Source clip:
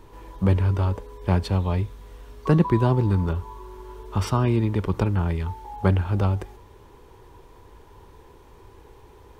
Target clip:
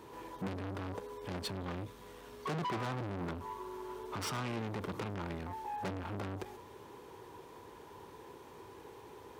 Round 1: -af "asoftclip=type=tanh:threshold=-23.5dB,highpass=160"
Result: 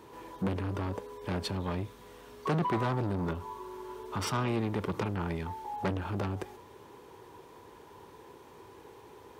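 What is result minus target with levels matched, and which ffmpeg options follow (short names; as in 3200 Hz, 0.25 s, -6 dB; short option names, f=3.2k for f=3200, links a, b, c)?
soft clip: distortion -4 dB
-af "asoftclip=type=tanh:threshold=-33dB,highpass=160"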